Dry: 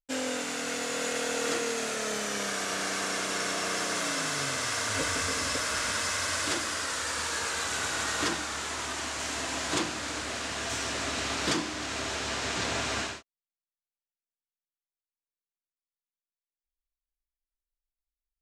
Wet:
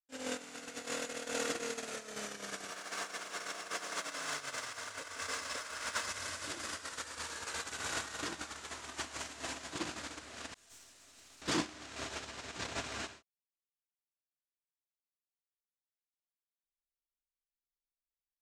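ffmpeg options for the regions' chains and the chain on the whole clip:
ffmpeg -i in.wav -filter_complex "[0:a]asettb=1/sr,asplit=3[link_01][link_02][link_03];[link_01]atrim=end=2.704[link_04];[link_02]atrim=start=2.7:end=6.07,asetpts=PTS-STARTPTS,afade=type=in:duration=0.004:curve=qsin,afade=type=out:start_time=3.366:duration=0.004:curve=qsin,aeval=exprs='val(0)+0.5*0.00708*sgn(val(0))':channel_layout=same,equalizer=frequency=1100:width=0.78:gain=2.5,acrossover=split=390|7200[link_05][link_06][link_07];[link_05]acompressor=threshold=-53dB:ratio=4[link_08];[link_06]acompressor=threshold=-31dB:ratio=4[link_09];[link_07]acompressor=threshold=-44dB:ratio=4[link_10];[link_08][link_09][link_10]amix=inputs=3:normalize=0[link_11];[link_03]atrim=start=6.066[link_12];[link_04][link_11]acrossfade=duration=0.004:curve1=hsin:curve2=qsin[link_13];[link_13][link_12]acrossfade=duration=0.004:curve1=qsin:curve2=hsin,asettb=1/sr,asplit=3[link_14][link_15][link_16];[link_14]atrim=end=10.544[link_17];[link_15]atrim=start=10.54:end=11.42,asetpts=PTS-STARTPTS,afade=type=in:duration=0.004:curve=qsin,afade=type=out:start_time=0.876:duration=0.004:curve=qsin,aemphasis=mode=production:type=75fm,agate=range=-33dB:threshold=-18dB:ratio=3:release=100:detection=peak,aeval=exprs='(tanh(56.2*val(0)+0.55)-tanh(0.55))/56.2':channel_layout=same[link_18];[link_16]atrim=start=11.416[link_19];[link_17][link_18]acrossfade=duration=0.004:curve1=hsin:curve2=qsin[link_20];[link_20][link_19]acrossfade=duration=0.004:curve1=qsin:curve2=hsin,alimiter=level_in=2dB:limit=-24dB:level=0:latency=1:release=66,volume=-2dB,agate=range=-35dB:threshold=-31dB:ratio=16:detection=peak,dynaudnorm=framelen=100:gausssize=5:maxgain=10.5dB,volume=10dB" out.wav

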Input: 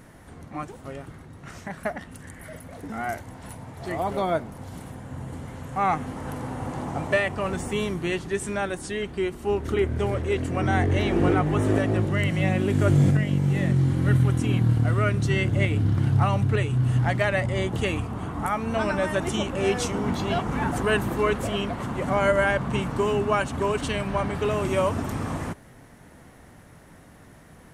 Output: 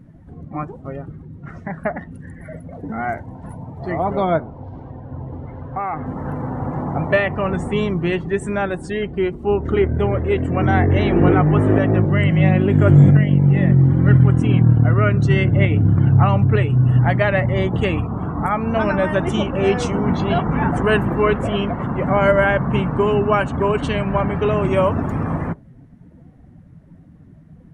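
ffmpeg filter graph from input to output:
ffmpeg -i in.wav -filter_complex "[0:a]asettb=1/sr,asplit=3[link_01][link_02][link_03];[link_01]atrim=end=4.404[link_04];[link_02]atrim=start=4.4:end=6.06,asetpts=PTS-STARTPTS,afade=type=in:duration=0.004:curve=qsin,afade=type=out:start_time=1.656:duration=0.004:curve=qsin,equalizer=frequency=180:width_type=o:width=0.53:gain=-11,acompressor=threshold=-25dB:ratio=12:attack=3.2:release=140:knee=1:detection=peak,lowpass=frequency=5000:width=0.5412,lowpass=frequency=5000:width=1.3066[link_05];[link_03]atrim=start=6.056[link_06];[link_04][link_05]acrossfade=duration=0.004:curve1=hsin:curve2=qsin[link_07];[link_07][link_06]acrossfade=duration=0.004:curve1=qsin:curve2=hsin,afftdn=noise_reduction=18:noise_floor=-42,lowpass=frequency=2600:poles=1,equalizer=frequency=160:width_type=o:width=0.39:gain=5,volume=6.5dB" out.wav

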